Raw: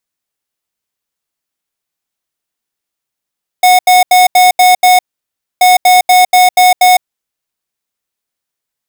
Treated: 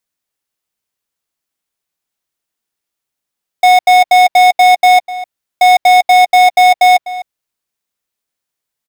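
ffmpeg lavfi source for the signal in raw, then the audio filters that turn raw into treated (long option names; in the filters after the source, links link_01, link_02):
-f lavfi -i "aevalsrc='0.531*(2*lt(mod(731*t,1),0.5)-1)*clip(min(mod(mod(t,1.98),0.24),0.16-mod(mod(t,1.98),0.24))/0.005,0,1)*lt(mod(t,1.98),1.44)':duration=3.96:sample_rate=44100"
-filter_complex "[0:a]acrossover=split=4600[link_01][link_02];[link_02]alimiter=limit=-19.5dB:level=0:latency=1:release=361[link_03];[link_01][link_03]amix=inputs=2:normalize=0,asplit=2[link_04][link_05];[link_05]adelay=250.7,volume=-15dB,highshelf=frequency=4000:gain=-5.64[link_06];[link_04][link_06]amix=inputs=2:normalize=0"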